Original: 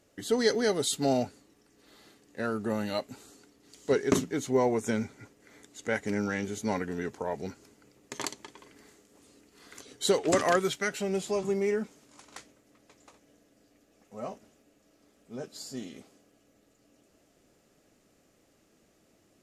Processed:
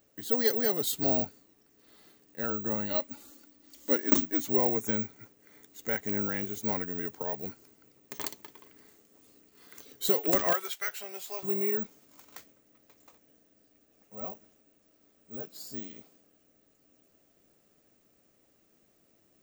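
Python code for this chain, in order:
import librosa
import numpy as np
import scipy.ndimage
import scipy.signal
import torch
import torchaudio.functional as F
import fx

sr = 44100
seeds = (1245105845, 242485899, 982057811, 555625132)

y = fx.comb(x, sr, ms=3.5, depth=0.74, at=(2.9, 4.5))
y = fx.highpass(y, sr, hz=770.0, slope=12, at=(10.53, 11.43))
y = (np.kron(y[::2], np.eye(2)[0]) * 2)[:len(y)]
y = y * 10.0 ** (-4.0 / 20.0)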